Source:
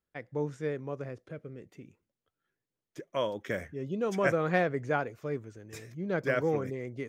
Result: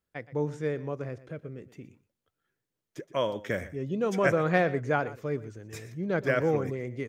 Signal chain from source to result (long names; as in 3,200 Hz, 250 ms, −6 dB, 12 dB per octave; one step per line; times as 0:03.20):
parametric band 100 Hz +2.5 dB 1.2 octaves
on a send: single-tap delay 120 ms −16.5 dB
on the sum: level +2.5 dB